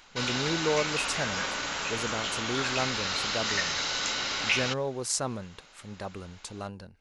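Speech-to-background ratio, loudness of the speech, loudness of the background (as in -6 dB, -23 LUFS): -5.0 dB, -34.0 LUFS, -29.0 LUFS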